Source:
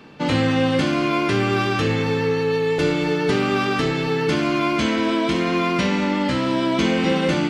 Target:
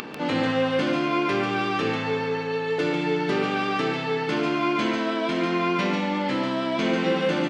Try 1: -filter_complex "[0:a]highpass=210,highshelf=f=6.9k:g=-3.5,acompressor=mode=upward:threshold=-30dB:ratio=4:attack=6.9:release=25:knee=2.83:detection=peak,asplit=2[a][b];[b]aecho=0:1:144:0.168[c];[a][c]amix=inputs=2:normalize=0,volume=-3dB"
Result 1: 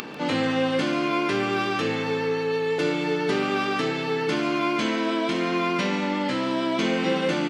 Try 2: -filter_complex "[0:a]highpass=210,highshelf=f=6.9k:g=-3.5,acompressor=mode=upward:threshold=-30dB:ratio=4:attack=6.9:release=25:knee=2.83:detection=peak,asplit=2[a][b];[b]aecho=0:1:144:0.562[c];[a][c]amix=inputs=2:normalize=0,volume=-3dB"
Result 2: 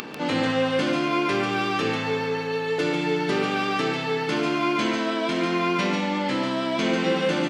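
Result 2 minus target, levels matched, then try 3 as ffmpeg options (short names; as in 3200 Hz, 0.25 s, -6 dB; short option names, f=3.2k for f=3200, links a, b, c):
8000 Hz band +4.5 dB
-filter_complex "[0:a]highpass=210,highshelf=f=6.9k:g=-14.5,acompressor=mode=upward:threshold=-30dB:ratio=4:attack=6.9:release=25:knee=2.83:detection=peak,asplit=2[a][b];[b]aecho=0:1:144:0.562[c];[a][c]amix=inputs=2:normalize=0,volume=-3dB"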